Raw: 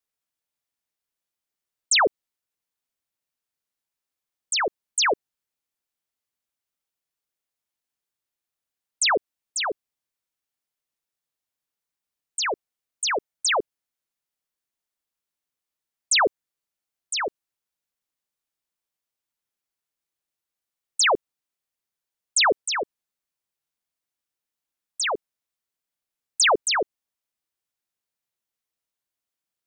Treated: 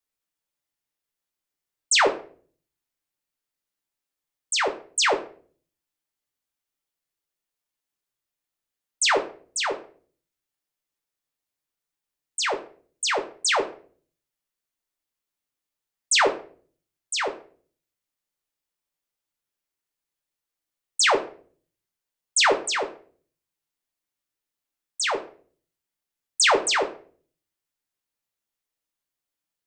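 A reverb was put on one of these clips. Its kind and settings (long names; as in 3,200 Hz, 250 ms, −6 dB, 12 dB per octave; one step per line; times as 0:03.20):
rectangular room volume 39 cubic metres, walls mixed, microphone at 0.34 metres
level −1 dB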